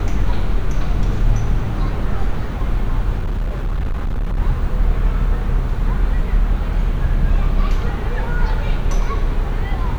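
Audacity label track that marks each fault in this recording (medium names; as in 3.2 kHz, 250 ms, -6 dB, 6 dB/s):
3.180000	4.400000	clipped -16.5 dBFS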